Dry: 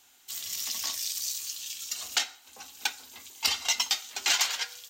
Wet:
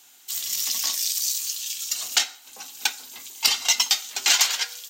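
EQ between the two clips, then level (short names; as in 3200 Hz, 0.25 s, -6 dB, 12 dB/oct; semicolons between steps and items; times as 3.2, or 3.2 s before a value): HPF 120 Hz 12 dB/oct; high shelf 4000 Hz +5.5 dB; +3.5 dB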